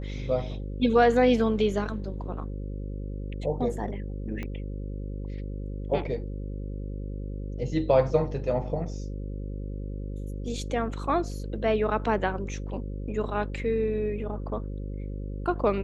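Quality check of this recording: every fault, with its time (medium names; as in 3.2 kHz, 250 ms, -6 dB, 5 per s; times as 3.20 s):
buzz 50 Hz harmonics 11 -34 dBFS
4.43 s: pop -22 dBFS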